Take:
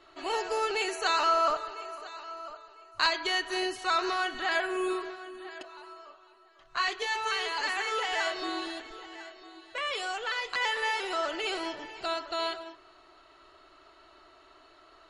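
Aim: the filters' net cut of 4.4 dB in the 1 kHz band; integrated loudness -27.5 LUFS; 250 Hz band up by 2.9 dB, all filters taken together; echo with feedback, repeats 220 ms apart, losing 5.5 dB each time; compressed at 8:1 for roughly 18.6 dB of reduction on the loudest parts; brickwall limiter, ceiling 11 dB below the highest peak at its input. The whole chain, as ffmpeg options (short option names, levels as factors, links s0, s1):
-af "equalizer=f=250:t=o:g=6.5,equalizer=f=1000:t=o:g=-6.5,acompressor=threshold=0.00631:ratio=8,alimiter=level_in=6.68:limit=0.0631:level=0:latency=1,volume=0.15,aecho=1:1:220|440|660|880|1100|1320|1540:0.531|0.281|0.149|0.079|0.0419|0.0222|0.0118,volume=11.2"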